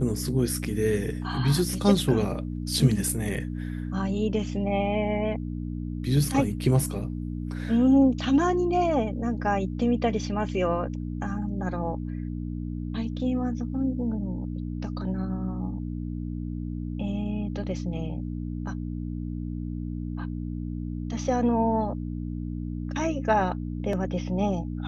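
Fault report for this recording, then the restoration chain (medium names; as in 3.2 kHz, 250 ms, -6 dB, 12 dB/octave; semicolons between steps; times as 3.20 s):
hum 60 Hz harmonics 5 -32 dBFS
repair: de-hum 60 Hz, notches 5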